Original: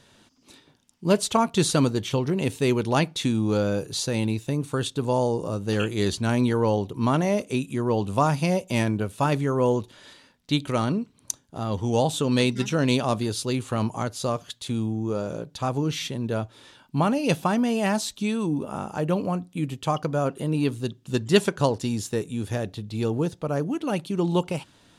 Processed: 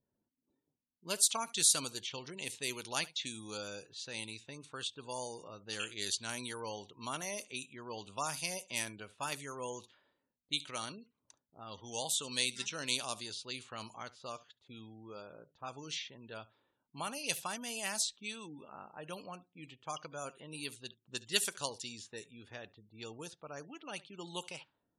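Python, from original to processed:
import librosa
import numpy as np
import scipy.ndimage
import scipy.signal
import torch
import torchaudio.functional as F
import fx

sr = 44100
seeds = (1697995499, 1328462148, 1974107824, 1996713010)

y = x + 10.0 ** (-20.0 / 20.0) * np.pad(x, (int(71 * sr / 1000.0), 0))[:len(x)]
y = fx.env_lowpass(y, sr, base_hz=330.0, full_db=-19.0)
y = F.preemphasis(torch.from_numpy(y), 0.97).numpy()
y = fx.spec_gate(y, sr, threshold_db=-25, keep='strong')
y = y * librosa.db_to_amplitude(2.0)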